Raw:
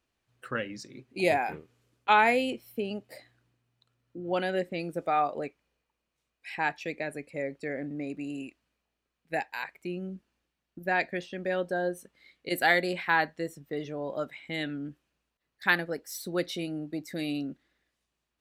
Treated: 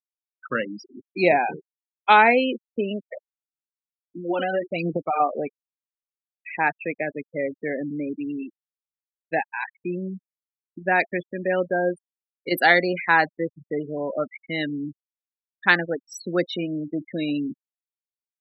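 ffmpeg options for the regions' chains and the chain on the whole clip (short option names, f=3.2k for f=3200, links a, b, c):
-filter_complex "[0:a]asettb=1/sr,asplit=3[a][b][c];[a]atrim=end=3.124[d];[b]atrim=start=3.12:end=5.2,asetpts=PTS-STARTPTS,afade=t=in:d=0.004:c=qsin,afade=t=out:st=2.076:d=0.004:c=qsin,aphaser=in_gain=1:out_gain=1:delay=4:decay=0.62:speed=1.1:type=sinusoidal,acompressor=threshold=-26dB:ratio=16:attack=3.2:release=140:knee=1:detection=peak[e];[c]atrim=start=5.196[f];[d][e]acrossfade=d=0.004:c1=hsin:c2=qsin[g];[g][f]acrossfade=d=0.004:c1=qsin:c2=hsin,highpass=f=140:w=0.5412,highpass=f=140:w=1.3066,afftfilt=real='re*gte(hypot(re,im),0.0282)':imag='im*gte(hypot(re,im),0.0282)':win_size=1024:overlap=0.75,volume=7dB"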